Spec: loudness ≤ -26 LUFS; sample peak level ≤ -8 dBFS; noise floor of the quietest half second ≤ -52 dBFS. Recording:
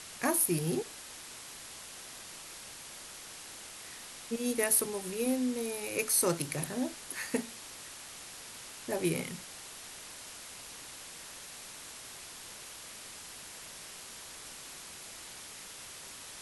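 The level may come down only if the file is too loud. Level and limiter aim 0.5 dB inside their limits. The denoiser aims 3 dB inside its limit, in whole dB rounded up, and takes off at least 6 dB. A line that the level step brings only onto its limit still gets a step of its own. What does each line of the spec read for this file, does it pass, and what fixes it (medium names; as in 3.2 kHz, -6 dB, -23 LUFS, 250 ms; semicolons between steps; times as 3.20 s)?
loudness -36.0 LUFS: pass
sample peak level -11.5 dBFS: pass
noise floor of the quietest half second -47 dBFS: fail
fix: noise reduction 8 dB, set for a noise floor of -47 dBFS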